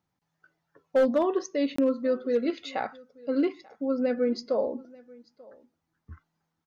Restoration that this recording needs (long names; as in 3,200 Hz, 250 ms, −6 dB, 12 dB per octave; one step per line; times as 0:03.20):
clipped peaks rebuilt −17 dBFS
repair the gap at 0:01.76, 24 ms
echo removal 888 ms −24 dB